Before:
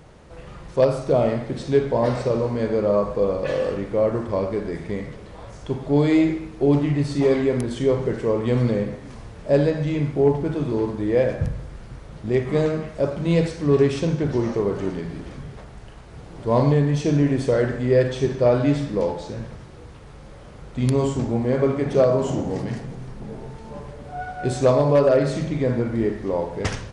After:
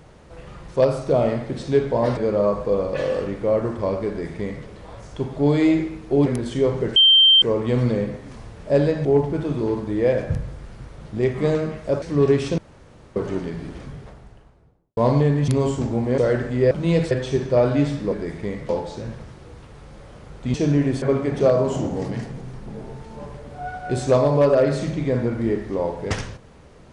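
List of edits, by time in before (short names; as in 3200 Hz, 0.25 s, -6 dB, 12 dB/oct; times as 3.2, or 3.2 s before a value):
2.17–2.67 cut
4.58–5.15 copy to 19.01
6.76–7.51 cut
8.21 add tone 3140 Hz -9.5 dBFS 0.46 s
9.84–10.16 cut
13.13–13.53 move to 18
14.09–14.67 room tone
15.29–16.48 studio fade out
16.99–17.47 swap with 20.86–21.56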